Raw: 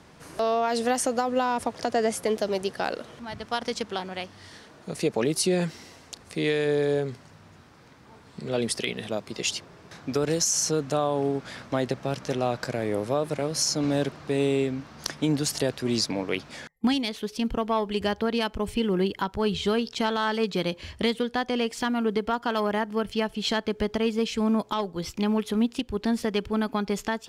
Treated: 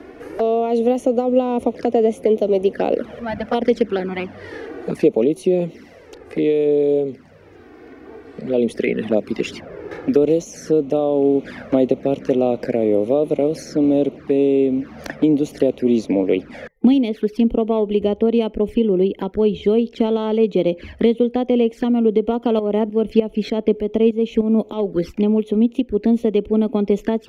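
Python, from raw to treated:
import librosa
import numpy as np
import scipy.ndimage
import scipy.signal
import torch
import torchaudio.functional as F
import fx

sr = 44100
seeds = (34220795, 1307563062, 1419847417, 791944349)

y = fx.high_shelf(x, sr, hz=3000.0, db=-8.0)
y = fx.env_flanger(y, sr, rest_ms=3.1, full_db=-25.0)
y = fx.tremolo_shape(y, sr, shape='saw_up', hz=3.3, depth_pct=75, at=(22.59, 24.9))
y = fx.rider(y, sr, range_db=5, speed_s=0.5)
y = fx.graphic_eq(y, sr, hz=(125, 250, 500, 1000, 2000, 4000, 8000), db=(-10, 6, 7, -8, 3, -6, -10))
y = fx.band_squash(y, sr, depth_pct=40)
y = F.gain(torch.from_numpy(y), 6.5).numpy()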